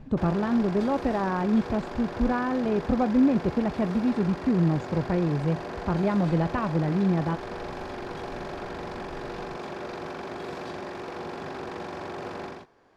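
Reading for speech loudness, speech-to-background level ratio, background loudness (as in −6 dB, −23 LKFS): −26.0 LKFS, 10.5 dB, −36.5 LKFS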